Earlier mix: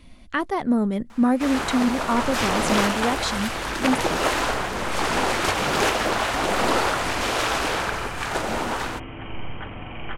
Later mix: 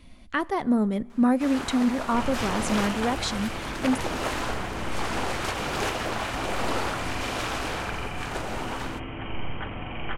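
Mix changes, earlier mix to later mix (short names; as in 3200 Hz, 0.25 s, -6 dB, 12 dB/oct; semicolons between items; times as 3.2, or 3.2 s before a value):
speech -3.0 dB; first sound -8.0 dB; reverb: on, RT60 1.5 s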